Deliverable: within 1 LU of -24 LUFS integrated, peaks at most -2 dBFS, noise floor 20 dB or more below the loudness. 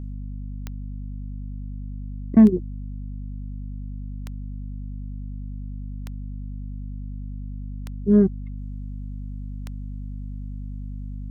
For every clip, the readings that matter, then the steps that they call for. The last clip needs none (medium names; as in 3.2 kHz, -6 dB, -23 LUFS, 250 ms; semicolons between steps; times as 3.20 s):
clicks found 6; hum 50 Hz; highest harmonic 250 Hz; hum level -30 dBFS; loudness -27.5 LUFS; peak level -4.5 dBFS; loudness target -24.0 LUFS
-> de-click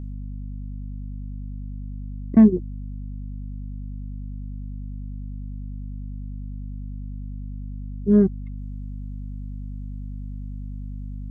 clicks found 0; hum 50 Hz; highest harmonic 250 Hz; hum level -30 dBFS
-> hum notches 50/100/150/200/250 Hz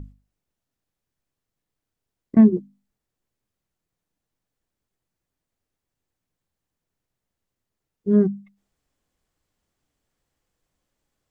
hum not found; loudness -19.0 LUFS; peak level -4.5 dBFS; loudness target -24.0 LUFS
-> trim -5 dB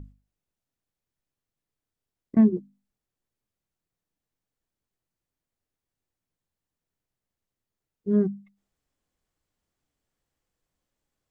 loudness -24.0 LUFS; peak level -9.5 dBFS; noise floor -89 dBFS